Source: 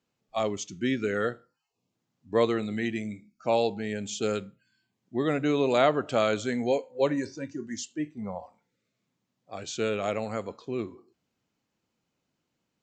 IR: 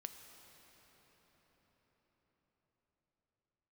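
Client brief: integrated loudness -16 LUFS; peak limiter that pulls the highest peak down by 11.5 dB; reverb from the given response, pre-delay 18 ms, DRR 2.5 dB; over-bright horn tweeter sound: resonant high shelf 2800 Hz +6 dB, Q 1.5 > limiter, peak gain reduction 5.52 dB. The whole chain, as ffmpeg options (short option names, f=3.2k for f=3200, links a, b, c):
-filter_complex "[0:a]alimiter=limit=-19dB:level=0:latency=1,asplit=2[a][b];[1:a]atrim=start_sample=2205,adelay=18[c];[b][c]afir=irnorm=-1:irlink=0,volume=2dB[d];[a][d]amix=inputs=2:normalize=0,highshelf=f=2.8k:t=q:w=1.5:g=6,volume=15dB,alimiter=limit=-4dB:level=0:latency=1"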